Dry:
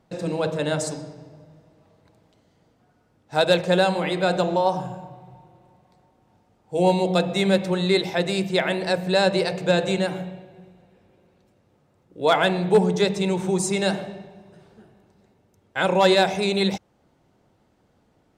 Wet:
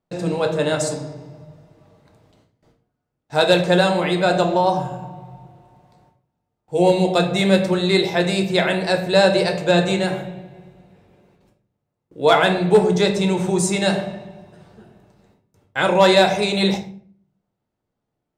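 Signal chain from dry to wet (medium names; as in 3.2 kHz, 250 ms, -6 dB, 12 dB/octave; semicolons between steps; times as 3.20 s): gate with hold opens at -50 dBFS; reverberation RT60 0.50 s, pre-delay 7 ms, DRR 4.5 dB; trim +3 dB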